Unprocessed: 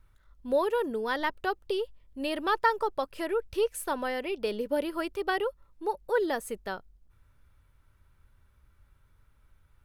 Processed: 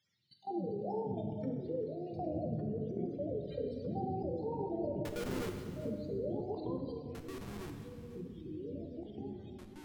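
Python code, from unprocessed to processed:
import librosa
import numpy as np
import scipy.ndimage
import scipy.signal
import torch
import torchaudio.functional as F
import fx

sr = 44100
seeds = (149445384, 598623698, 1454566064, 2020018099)

y = fx.octave_mirror(x, sr, pivot_hz=440.0)
y = fx.hum_notches(y, sr, base_hz=50, count=6)
y = fx.spec_gate(y, sr, threshold_db=-30, keep='strong')
y = scipy.signal.sosfilt(scipy.signal.butter(4, 110.0, 'highpass', fs=sr, output='sos'), y)
y = fx.level_steps(y, sr, step_db=21)
y = fx.ladder_lowpass(y, sr, hz=5300.0, resonance_pct=30)
y = fx.schmitt(y, sr, flips_db=-54.5, at=(5.05, 5.49))
y = y + 10.0 ** (-16.0 / 20.0) * np.pad(y, (int(393 * sr / 1000.0), 0))[:len(y)]
y = fx.rev_plate(y, sr, seeds[0], rt60_s=1.5, hf_ratio=0.95, predelay_ms=0, drr_db=4.0)
y = fx.echo_pitch(y, sr, ms=784, semitones=-4, count=3, db_per_echo=-6.0)
y = F.gain(torch.from_numpy(y), 10.5).numpy()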